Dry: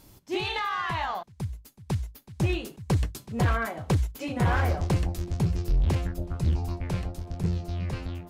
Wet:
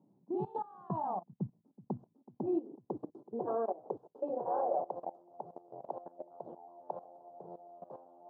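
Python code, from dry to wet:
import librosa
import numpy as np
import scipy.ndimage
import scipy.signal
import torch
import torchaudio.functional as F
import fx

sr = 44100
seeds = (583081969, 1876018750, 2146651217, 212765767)

y = scipy.signal.sosfilt(scipy.signal.ellip(3, 1.0, 40, [120.0, 870.0], 'bandpass', fs=sr, output='sos'), x)
y = fx.level_steps(y, sr, step_db=18)
y = fx.filter_sweep_highpass(y, sr, from_hz=190.0, to_hz=650.0, start_s=1.41, end_s=5.12, q=2.5)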